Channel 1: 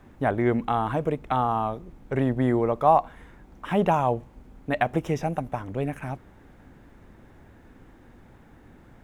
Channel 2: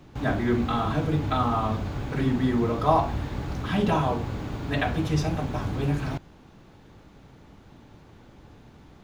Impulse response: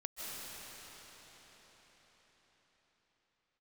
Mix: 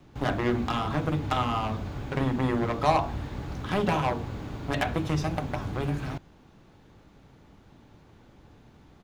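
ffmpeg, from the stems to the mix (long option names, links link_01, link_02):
-filter_complex "[0:a]acompressor=threshold=-32dB:ratio=2,acrusher=bits=3:mix=0:aa=0.5,volume=0.5dB[link_01];[1:a]adelay=1.2,volume=-4dB[link_02];[link_01][link_02]amix=inputs=2:normalize=0"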